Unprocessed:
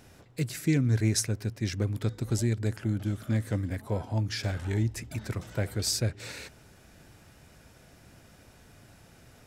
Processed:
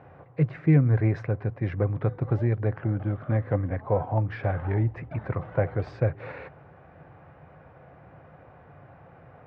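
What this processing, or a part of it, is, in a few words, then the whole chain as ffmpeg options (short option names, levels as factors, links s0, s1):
bass cabinet: -af "highpass=71,equalizer=f=89:t=q:w=4:g=3,equalizer=f=150:t=q:w=4:g=8,equalizer=f=220:t=q:w=4:g=-6,equalizer=f=520:t=q:w=4:g=8,equalizer=f=760:t=q:w=4:g=9,equalizer=f=1100:t=q:w=4:g=8,lowpass=f=2100:w=0.5412,lowpass=f=2100:w=1.3066,volume=1.26"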